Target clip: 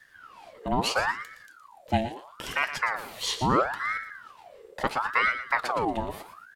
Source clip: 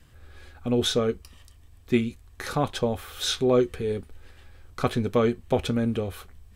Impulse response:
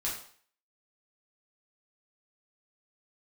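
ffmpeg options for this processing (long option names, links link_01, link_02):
-af "aecho=1:1:116|232|348:0.282|0.0789|0.0221,aeval=exprs='val(0)*sin(2*PI*1100*n/s+1100*0.6/0.75*sin(2*PI*0.75*n/s))':channel_layout=same"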